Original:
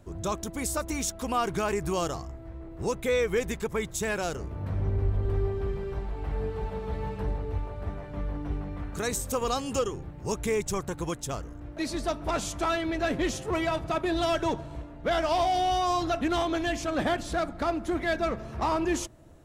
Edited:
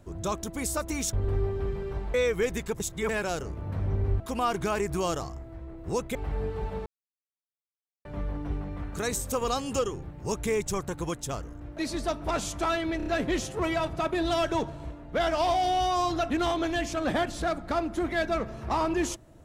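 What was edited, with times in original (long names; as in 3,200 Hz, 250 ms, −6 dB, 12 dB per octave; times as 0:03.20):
0:01.13–0:03.08: swap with 0:05.14–0:06.15
0:03.74–0:04.03: reverse
0:06.86–0:08.05: silence
0:12.97: stutter 0.03 s, 4 plays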